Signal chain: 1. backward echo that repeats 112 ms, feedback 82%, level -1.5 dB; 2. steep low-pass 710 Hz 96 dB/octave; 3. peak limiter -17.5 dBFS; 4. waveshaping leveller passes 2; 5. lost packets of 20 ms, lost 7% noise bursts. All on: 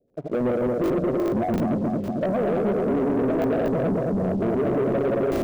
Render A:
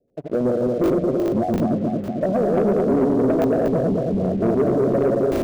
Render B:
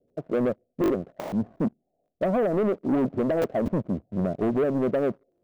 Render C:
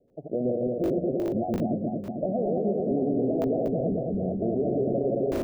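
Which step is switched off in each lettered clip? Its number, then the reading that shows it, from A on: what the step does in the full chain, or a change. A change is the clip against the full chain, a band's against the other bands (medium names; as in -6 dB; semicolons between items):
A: 3, momentary loudness spread change +2 LU; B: 1, momentary loudness spread change +3 LU; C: 4, 1 kHz band -3.0 dB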